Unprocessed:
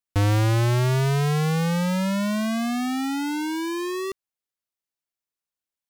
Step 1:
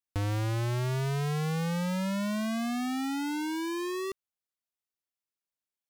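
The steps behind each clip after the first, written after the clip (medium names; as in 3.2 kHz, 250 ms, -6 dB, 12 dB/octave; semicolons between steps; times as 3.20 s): compression, threshold -25 dBFS, peak gain reduction 5.5 dB; trim -5 dB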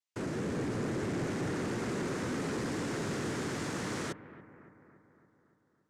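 noise-vocoded speech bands 3; saturation -27 dBFS, distortion -15 dB; bucket-brigade echo 283 ms, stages 4096, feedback 60%, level -16 dB; trim -1.5 dB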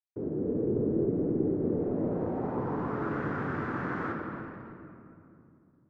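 bit crusher 8-bit; reverberation RT60 2.7 s, pre-delay 7 ms, DRR 0.5 dB; low-pass sweep 420 Hz -> 1.4 kHz, 1.60–3.21 s; trim -2.5 dB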